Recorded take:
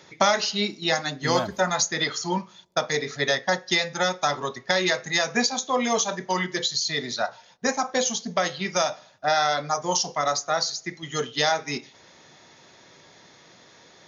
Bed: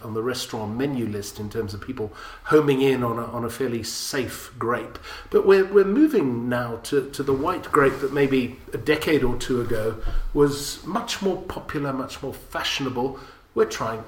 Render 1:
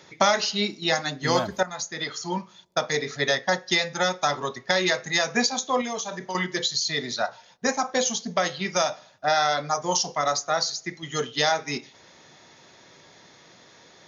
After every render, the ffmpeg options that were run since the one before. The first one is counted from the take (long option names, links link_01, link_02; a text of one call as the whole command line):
ffmpeg -i in.wav -filter_complex "[0:a]asettb=1/sr,asplit=3[link_01][link_02][link_03];[link_01]atrim=end=5.814[link_04];[link_02]atrim=start=5.81:end=6.35,asetpts=PTS-STARTPTS,afade=type=in:duration=0.004:curve=qsin,afade=type=out:start_time=0.536:duration=0.004:curve=qsin,acompressor=threshold=-29dB:ratio=3:attack=3.2:release=140:knee=1:detection=peak[link_05];[link_03]atrim=start=6.346[link_06];[link_04][link_05]acrossfade=duration=0.004:curve1=hsin:curve2=qsin[link_07];[link_07][link_06]acrossfade=duration=0.004:curve1=qsin:curve2=hsin,asplit=2[link_08][link_09];[link_08]atrim=end=1.63,asetpts=PTS-STARTPTS,afade=type=out:start_time=1.626:duration=0.004:curve=hsin:silence=0.223872[link_10];[link_09]atrim=start=1.63,asetpts=PTS-STARTPTS,afade=type=in:duration=1.52:curve=qsin:silence=0.223872[link_11];[link_10][link_11]concat=n=2:v=0:a=1" out.wav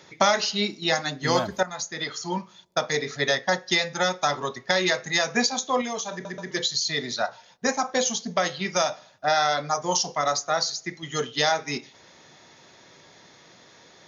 ffmpeg -i in.wav -filter_complex "[0:a]asplit=4[link_01][link_02][link_03][link_04];[link_01]atrim=end=6.252[link_05];[link_02]atrim=start=6.118:end=6.252[link_06];[link_03]atrim=start=6.118:end=6.252[link_07];[link_04]atrim=start=6.508[link_08];[link_05][link_06]acrossfade=duration=0.004:curve1=hsin:curve2=hsin[link_09];[link_09][link_07]acrossfade=duration=0.004:curve1=hsin:curve2=hsin[link_10];[link_10][link_08]acrossfade=duration=0.004:curve1=hsin:curve2=hsin" out.wav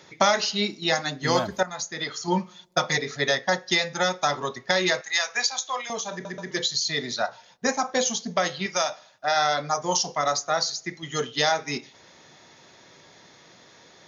ffmpeg -i in.wav -filter_complex "[0:a]asettb=1/sr,asplit=3[link_01][link_02][link_03];[link_01]atrim=end=2.274[link_04];[link_02]atrim=start=2.27:end=2.98,asetpts=PTS-STARTPTS,afade=type=in:duration=0.004:curve=qsin,afade=type=out:start_time=0.706:duration=0.004:curve=qsin,aecho=1:1:5.6:0.95,atrim=end_sample=31311[link_05];[link_03]atrim=start=2.976[link_06];[link_04][link_05]acrossfade=duration=0.004:curve1=hsin:curve2=qsin[link_07];[link_07][link_06]acrossfade=duration=0.004:curve1=qsin:curve2=hsin,asettb=1/sr,asplit=3[link_08][link_09][link_10];[link_08]atrim=end=5.014[link_11];[link_09]atrim=start=5.01:end=5.9,asetpts=PTS-STARTPTS,afade=type=in:duration=0.004:curve=qsin,afade=type=out:start_time=0.886:duration=0.004:curve=qsin,highpass=970[link_12];[link_10]atrim=start=5.896[link_13];[link_11][link_12]acrossfade=duration=0.004:curve1=hsin:curve2=qsin[link_14];[link_14][link_13]acrossfade=duration=0.004:curve1=qsin:curve2=hsin,asettb=1/sr,asplit=3[link_15][link_16][link_17];[link_15]atrim=end=8.664[link_18];[link_16]atrim=start=8.66:end=9.36,asetpts=PTS-STARTPTS,afade=type=in:duration=0.004:curve=qsin,afade=type=out:start_time=0.696:duration=0.004:curve=qsin,lowshelf=frequency=370:gain=-9.5[link_19];[link_17]atrim=start=9.356[link_20];[link_18][link_19]acrossfade=duration=0.004:curve1=hsin:curve2=qsin[link_21];[link_21][link_20]acrossfade=duration=0.004:curve1=qsin:curve2=hsin" out.wav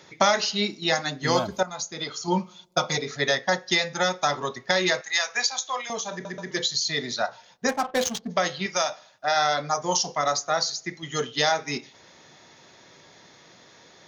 ffmpeg -i in.wav -filter_complex "[0:a]asettb=1/sr,asplit=3[link_01][link_02][link_03];[link_01]atrim=end=1.354[link_04];[link_02]atrim=start=1.35:end=3.08,asetpts=PTS-STARTPTS,afade=type=in:duration=0.004:curve=qsin,afade=type=out:start_time=1.726:duration=0.004:curve=qsin,equalizer=frequency=1800:width=7:gain=-14[link_05];[link_03]atrim=start=3.076[link_06];[link_04][link_05]acrossfade=duration=0.004:curve1=hsin:curve2=qsin[link_07];[link_07][link_06]acrossfade=duration=0.004:curve1=qsin:curve2=hsin,asplit=3[link_08][link_09][link_10];[link_08]afade=type=out:start_time=7.68:duration=0.02[link_11];[link_09]adynamicsmooth=sensitivity=4.5:basefreq=790,afade=type=in:start_time=7.68:duration=0.02,afade=type=out:start_time=8.29:duration=0.02[link_12];[link_10]afade=type=in:start_time=8.29:duration=0.02[link_13];[link_11][link_12][link_13]amix=inputs=3:normalize=0" out.wav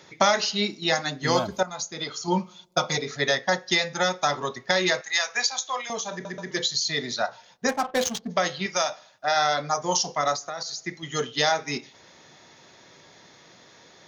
ffmpeg -i in.wav -filter_complex "[0:a]asettb=1/sr,asplit=3[link_01][link_02][link_03];[link_01]atrim=end=10.344[link_04];[link_02]atrim=start=10.34:end=10.81,asetpts=PTS-STARTPTS,afade=type=in:duration=0.004:curve=qsin,afade=type=out:start_time=0.466:duration=0.004:curve=qsin,acompressor=threshold=-28dB:ratio=12:attack=3.2:release=140:knee=1:detection=peak[link_05];[link_03]atrim=start=10.806[link_06];[link_04][link_05]acrossfade=duration=0.004:curve1=hsin:curve2=qsin[link_07];[link_07][link_06]acrossfade=duration=0.004:curve1=qsin:curve2=hsin" out.wav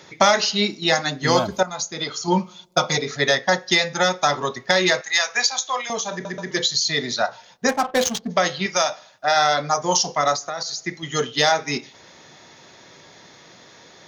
ffmpeg -i in.wav -af "acontrast=22" out.wav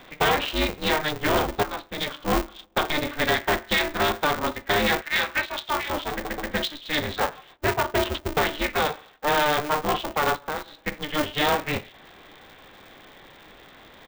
ffmpeg -i in.wav -af "aresample=8000,asoftclip=type=tanh:threshold=-16dB,aresample=44100,aeval=exprs='val(0)*sgn(sin(2*PI*150*n/s))':channel_layout=same" out.wav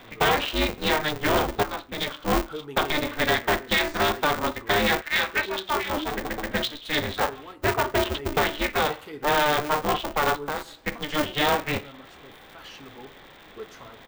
ffmpeg -i in.wav -i bed.wav -filter_complex "[1:a]volume=-19.5dB[link_01];[0:a][link_01]amix=inputs=2:normalize=0" out.wav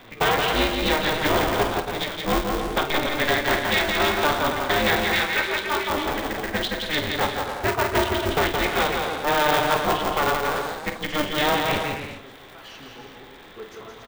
ffmpeg -i in.wav -filter_complex "[0:a]asplit=2[link_01][link_02];[link_02]adelay=48,volume=-12dB[link_03];[link_01][link_03]amix=inputs=2:normalize=0,asplit=2[link_04][link_05];[link_05]aecho=0:1:170|280.5|352.3|399|429.4:0.631|0.398|0.251|0.158|0.1[link_06];[link_04][link_06]amix=inputs=2:normalize=0" out.wav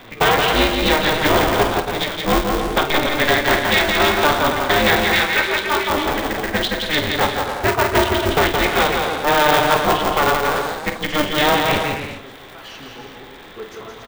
ffmpeg -i in.wav -af "volume=5.5dB" out.wav